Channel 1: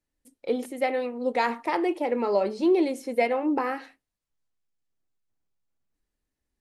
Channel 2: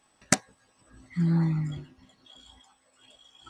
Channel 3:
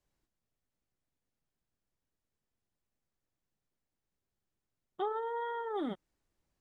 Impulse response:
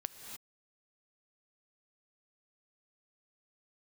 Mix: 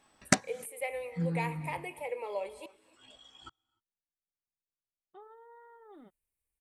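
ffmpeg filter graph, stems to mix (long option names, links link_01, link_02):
-filter_complex "[0:a]firequalizer=gain_entry='entry(150,0);entry(230,-29);entry(470,0);entry(690,-5);entry(980,0);entry(1400,-13);entry(2300,8);entry(3400,-4);entry(5500,-11);entry(8500,13)':delay=0.05:min_phase=1,volume=-11.5dB,asplit=3[link_01][link_02][link_03];[link_01]atrim=end=2.66,asetpts=PTS-STARTPTS,afade=type=out:start_time=2.656:duration=0.004:curve=hsin[link_04];[link_02]atrim=start=2.66:end=5.2,asetpts=PTS-STARTPTS,volume=0[link_05];[link_03]atrim=start=5.2,asetpts=PTS-STARTPTS,afade=type=in:duration=0.004:curve=hsin[link_06];[link_04][link_05][link_06]concat=n=3:v=0:a=1,asplit=3[link_07][link_08][link_09];[link_08]volume=-7dB[link_10];[1:a]highshelf=frequency=8000:gain=-8.5,volume=0.5dB,asplit=2[link_11][link_12];[link_12]volume=-22dB[link_13];[2:a]bandreject=frequency=3300:width=6,adelay=150,volume=-18dB[link_14];[link_09]apad=whole_len=154160[link_15];[link_11][link_15]sidechaincompress=threshold=-52dB:ratio=3:attack=7:release=480[link_16];[3:a]atrim=start_sample=2205[link_17];[link_10][link_13]amix=inputs=2:normalize=0[link_18];[link_18][link_17]afir=irnorm=-1:irlink=0[link_19];[link_07][link_16][link_14][link_19]amix=inputs=4:normalize=0,equalizer=frequency=130:width_type=o:width=0.22:gain=-3"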